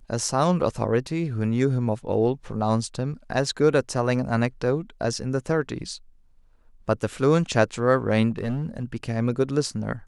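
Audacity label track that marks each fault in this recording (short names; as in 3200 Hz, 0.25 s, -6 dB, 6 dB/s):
8.300000	8.840000	clipped -22.5 dBFS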